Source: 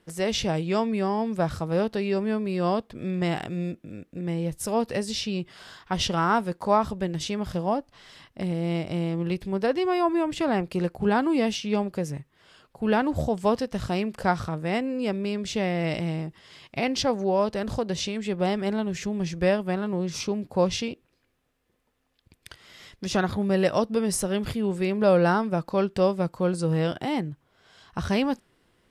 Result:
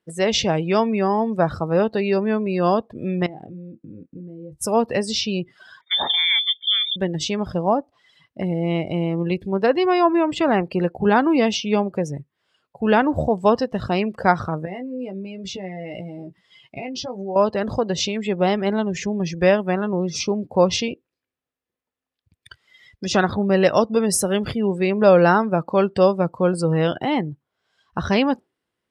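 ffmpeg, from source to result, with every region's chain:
ffmpeg -i in.wav -filter_complex "[0:a]asettb=1/sr,asplit=3[link_01][link_02][link_03];[link_01]atrim=end=3.264[link_04];[link_02]atrim=start=3.26:end=4.62,asetpts=PTS-STARTPTS,afade=type=in:duration=0.004:curve=qsin,afade=type=out:start_time=1.356:duration=0.004:curve=qsin,highshelf=frequency=2200:gain=-11,acompressor=threshold=-38dB:ratio=6:attack=3.2:release=140:knee=1:detection=peak,asplit=2[link_05][link_06];[link_06]adelay=27,volume=-9.5dB[link_07];[link_05][link_07]amix=inputs=2:normalize=0,atrim=end_sample=59976[link_08];[link_03]atrim=start=4.616[link_09];[link_04][link_08]acrossfade=duration=0.004:curve1=hsin:curve2=qsin[link_10];[link_10][link_09]acrossfade=duration=0.004:curve1=qsin:curve2=hsin,asettb=1/sr,asplit=3[link_11][link_12][link_13];[link_11]atrim=end=5.814[link_14];[link_12]atrim=start=5.81:end=6.96,asetpts=PTS-STARTPTS,afade=type=in:duration=0.004:curve=qsin,afade=type=out:start_time=1.146:duration=0.004:curve=qsin,asuperstop=centerf=900:order=20:qfactor=1.1,lowpass=frequency=3100:width_type=q:width=0.5098,lowpass=frequency=3100:width_type=q:width=0.6013,lowpass=frequency=3100:width_type=q:width=0.9,lowpass=frequency=3100:width_type=q:width=2.563,afreqshift=-3700[link_15];[link_13]atrim=start=6.956[link_16];[link_14][link_15]acrossfade=duration=0.004:curve1=hsin:curve2=qsin[link_17];[link_17][link_16]acrossfade=duration=0.004:curve1=qsin:curve2=hsin,asettb=1/sr,asplit=3[link_18][link_19][link_20];[link_18]atrim=end=14.654[link_21];[link_19]atrim=start=14.65:end=17.36,asetpts=PTS-STARTPTS,afade=type=in:duration=0.004:curve=qsin,afade=type=out:start_time=2.706:duration=0.004:curve=qsin,acompressor=threshold=-34dB:ratio=6:attack=3.2:release=140:knee=1:detection=peak,asplit=2[link_22][link_23];[link_23]adelay=16,volume=-5.5dB[link_24];[link_22][link_24]amix=inputs=2:normalize=0,atrim=end_sample=119511[link_25];[link_20]atrim=start=17.356[link_26];[link_21][link_25]acrossfade=duration=0.004:curve1=hsin:curve2=qsin[link_27];[link_27][link_26]acrossfade=duration=0.004:curve1=qsin:curve2=hsin,afftdn=noise_reduction=21:noise_floor=-41,highpass=57,lowshelf=frequency=230:gain=-5.5,volume=7.5dB" out.wav

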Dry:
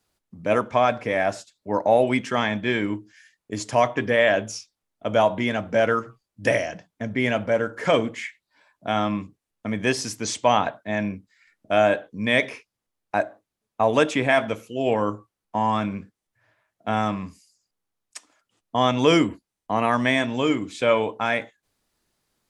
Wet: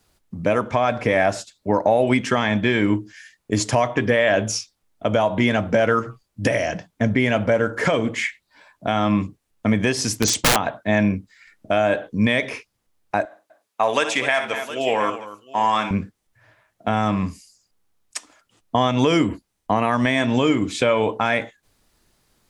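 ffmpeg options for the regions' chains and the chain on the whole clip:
ffmpeg -i in.wav -filter_complex "[0:a]asettb=1/sr,asplit=3[link_01][link_02][link_03];[link_01]atrim=end=10.074[link_04];[link_02]atrim=start=10.07:end=10.56,asetpts=PTS-STARTPTS,afade=type=in:duration=0.004:curve=qsin,afade=type=out:start_time=0.486:duration=0.004:curve=qsin,agate=range=-33dB:threshold=-42dB:ratio=3:release=100:detection=peak,equalizer=frequency=1500:width_type=o:width=2.1:gain=-3.5,aeval=exprs='(mod(8.41*val(0)+1,2)-1)/8.41':channel_layout=same[link_05];[link_03]atrim=start=10.556[link_06];[link_04][link_05]acrossfade=duration=0.004:curve1=hsin:curve2=qsin[link_07];[link_07][link_06]acrossfade=duration=0.004:curve1=qsin:curve2=hsin,asettb=1/sr,asplit=3[link_08][link_09][link_10];[link_08]atrim=end=13.254[link_11];[link_09]atrim=start=13.25:end=15.91,asetpts=PTS-STARTPTS,afade=type=in:duration=0.004:curve=qsin,afade=type=out:start_time=2.656:duration=0.004:curve=qsin,highpass=frequency=1300:poles=1,aecho=1:1:61|248|713:0.282|0.178|0.119,atrim=end_sample=117306[link_12];[link_10]atrim=start=15.906[link_13];[link_11][link_12]acrossfade=duration=0.004:curve1=hsin:curve2=qsin[link_14];[link_14][link_13]acrossfade=duration=0.004:curve1=qsin:curve2=hsin,lowshelf=frequency=93:gain=7.5,acompressor=threshold=-20dB:ratio=6,alimiter=limit=-15.5dB:level=0:latency=1:release=312,volume=9dB" out.wav

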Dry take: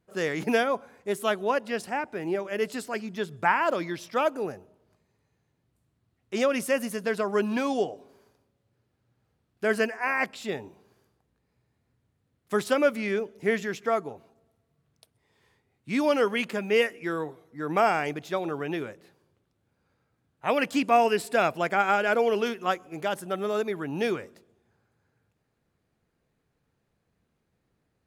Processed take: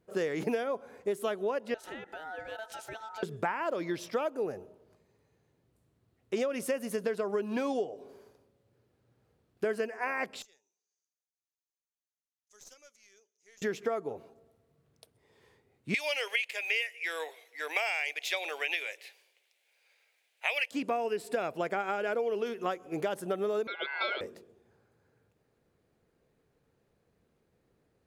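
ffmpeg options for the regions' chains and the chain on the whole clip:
ffmpeg -i in.wav -filter_complex "[0:a]asettb=1/sr,asplit=3[link_01][link_02][link_03];[link_01]atrim=end=1.744[link_04];[link_02]atrim=start=1.74:end=3.23,asetpts=PTS-STARTPTS,afade=type=in:duration=0.004:curve=qsin,afade=type=out:start_time=1.486:duration=0.004:curve=qsin,acompressor=threshold=-38dB:ratio=6:attack=3.2:release=140:knee=1:detection=peak,aeval=exprs='val(0)*sin(2*PI*1100*n/s)':channel_layout=same[link_05];[link_03]atrim=start=3.226[link_06];[link_04][link_05]acrossfade=duration=0.004:curve1=hsin:curve2=qsin[link_07];[link_07][link_06]acrossfade=duration=0.004:curve1=qsin:curve2=hsin,asettb=1/sr,asplit=3[link_08][link_09][link_10];[link_08]atrim=end=10.424[link_11];[link_09]atrim=start=10.42:end=13.62,asetpts=PTS-STARTPTS,afade=type=in:duration=0.004:curve=qsin,afade=type=out:start_time=3.196:duration=0.004:curve=qsin,bandpass=frequency=6300:width_type=q:width=8.8,aeval=exprs='(tanh(141*val(0)+0.55)-tanh(0.55))/141':channel_layout=same[link_12];[link_10]atrim=start=13.616[link_13];[link_11][link_12]acrossfade=duration=0.004:curve1=hsin:curve2=qsin[link_14];[link_14][link_13]acrossfade=duration=0.004:curve1=qsin:curve2=hsin,asettb=1/sr,asplit=3[link_15][link_16][link_17];[link_15]atrim=end=15.944[link_18];[link_16]atrim=start=15.94:end=20.71,asetpts=PTS-STARTPTS,afade=type=in:duration=0.004:curve=qsin,afade=type=out:start_time=4.766:duration=0.004:curve=qsin,highpass=frequency=640:width=0.5412,highpass=frequency=640:width=1.3066,highshelf=frequency=1700:width_type=q:width=3:gain=10[link_19];[link_17]atrim=start=20.706[link_20];[link_18][link_19]acrossfade=duration=0.004:curve1=hsin:curve2=qsin[link_21];[link_21][link_20]acrossfade=duration=0.004:curve1=qsin:curve2=hsin,asettb=1/sr,asplit=3[link_22][link_23][link_24];[link_22]atrim=end=23.674[link_25];[link_23]atrim=start=23.67:end=24.21,asetpts=PTS-STARTPTS,afade=type=in:duration=0.004:curve=qsin,afade=type=out:start_time=0.536:duration=0.004:curve=qsin,aeval=exprs='val(0)*sin(2*PI*1800*n/s)':channel_layout=same,highpass=frequency=320:width=0.5412,highpass=frequency=320:width=1.3066,equalizer=frequency=400:width_type=q:width=4:gain=5,equalizer=frequency=610:width_type=q:width=4:gain=6,equalizer=frequency=870:width_type=q:width=4:gain=5,equalizer=frequency=1900:width_type=q:width=4:gain=-7,equalizer=frequency=3500:width_type=q:width=4:gain=10,lowpass=frequency=3900:width=0.5412,lowpass=frequency=3900:width=1.3066[link_26];[link_24]atrim=start=24.206[link_27];[link_25][link_26]acrossfade=duration=0.004:curve1=hsin:curve2=qsin[link_28];[link_28][link_27]acrossfade=duration=0.004:curve1=qsin:curve2=hsin,equalizer=frequency=450:width_type=o:width=1:gain=7,acompressor=threshold=-28dB:ratio=12" out.wav

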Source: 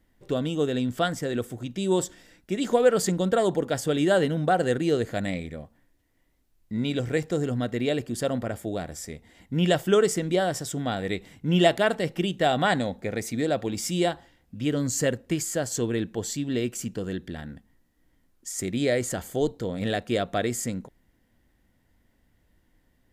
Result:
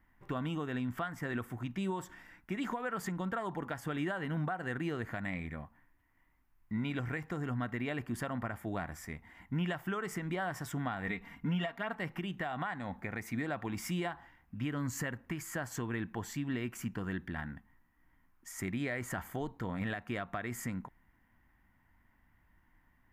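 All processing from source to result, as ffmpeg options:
ffmpeg -i in.wav -filter_complex "[0:a]asettb=1/sr,asplit=3[link_01][link_02][link_03];[link_01]atrim=end=11.074[link_04];[link_02]atrim=start=11.07:end=11.93,asetpts=PTS-STARTPTS,afade=type=in:duration=0.004:curve=qsin,afade=type=out:start_time=0.856:duration=0.004:curve=qsin,equalizer=frequency=8900:width=3.5:gain=-10.5,aecho=1:1:4.3:0.7,atrim=end_sample=37926[link_05];[link_03]atrim=start=11.926[link_06];[link_04][link_05]acrossfade=duration=0.004:curve1=hsin:curve2=qsin[link_07];[link_07][link_06]acrossfade=duration=0.004:curve1=qsin:curve2=hsin,equalizer=frequency=500:width_type=o:width=1:gain=-12,equalizer=frequency=1000:width_type=o:width=1:gain=11,equalizer=frequency=2000:width_type=o:width=1:gain=6,equalizer=frequency=4000:width_type=o:width=1:gain=-10,equalizer=frequency=8000:width_type=o:width=1:gain=-10,acompressor=threshold=-27dB:ratio=6,alimiter=limit=-23dB:level=0:latency=1:release=219,volume=-3dB" out.wav

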